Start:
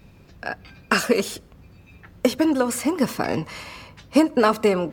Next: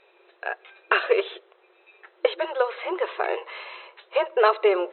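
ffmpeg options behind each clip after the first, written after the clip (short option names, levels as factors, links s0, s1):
-af "afftfilt=real='re*between(b*sr/4096,340,4100)':imag='im*between(b*sr/4096,340,4100)':win_size=4096:overlap=0.75"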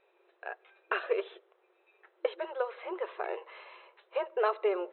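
-af "highshelf=f=3000:g=-10.5,volume=0.355"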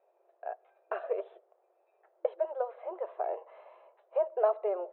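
-af "bandpass=f=660:t=q:w=4.7:csg=0,volume=2.37"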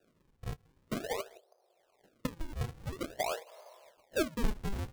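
-filter_complex "[0:a]acrossover=split=580|920[s0][s1][s2];[s0]asoftclip=type=hard:threshold=0.0126[s3];[s3][s1][s2]amix=inputs=3:normalize=0,acrusher=samples=41:mix=1:aa=0.000001:lfo=1:lforange=65.6:lforate=0.48"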